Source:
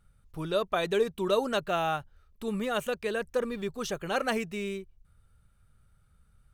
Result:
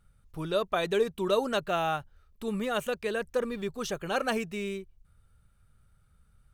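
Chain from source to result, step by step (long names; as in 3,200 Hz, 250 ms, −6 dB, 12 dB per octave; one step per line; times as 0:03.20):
0:04.05–0:04.47: notch filter 2,000 Hz, Q 11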